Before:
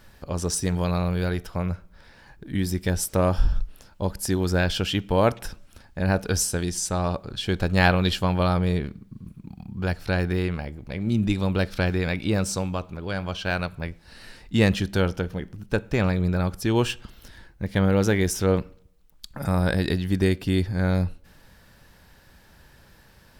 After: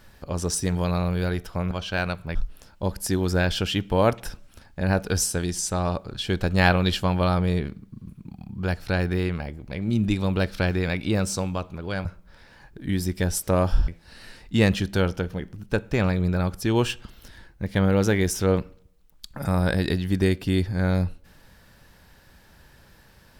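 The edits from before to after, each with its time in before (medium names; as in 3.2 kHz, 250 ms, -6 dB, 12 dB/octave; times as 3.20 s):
1.71–3.54 s: swap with 13.24–13.88 s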